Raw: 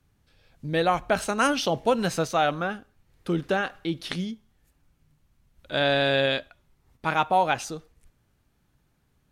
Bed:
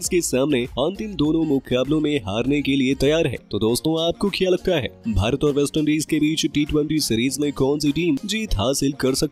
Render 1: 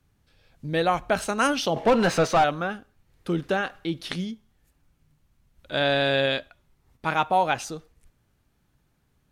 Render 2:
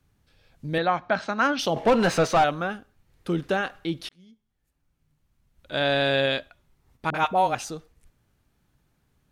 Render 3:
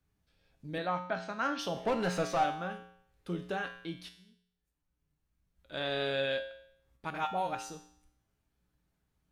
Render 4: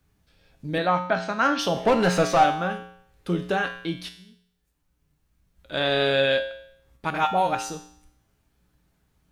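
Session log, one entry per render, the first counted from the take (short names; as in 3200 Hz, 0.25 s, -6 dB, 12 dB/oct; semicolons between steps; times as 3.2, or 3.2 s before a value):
1.76–2.44 overdrive pedal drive 23 dB, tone 1400 Hz, clips at -10.5 dBFS
0.78–1.59 speaker cabinet 150–4700 Hz, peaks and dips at 430 Hz -8 dB, 1600 Hz +3 dB, 2800 Hz -7 dB; 4.09–6.01 fade in; 7.1–7.55 dispersion highs, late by 45 ms, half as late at 480 Hz
resonator 60 Hz, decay 0.66 s, harmonics odd, mix 80%
gain +11 dB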